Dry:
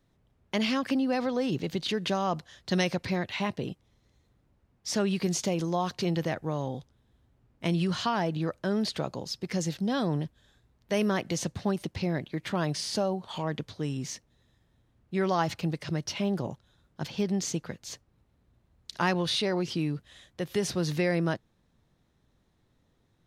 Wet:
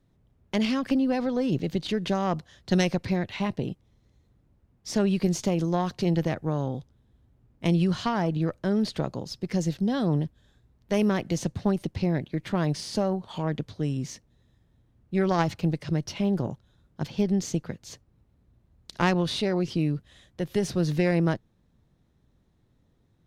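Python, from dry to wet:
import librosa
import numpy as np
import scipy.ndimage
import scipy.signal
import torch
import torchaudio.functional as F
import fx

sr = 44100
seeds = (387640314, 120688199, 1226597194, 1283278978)

y = fx.cheby_harmonics(x, sr, harmonics=(2, 3), levels_db=(-13, -20), full_scale_db=-12.0)
y = fx.low_shelf(y, sr, hz=460.0, db=8.0)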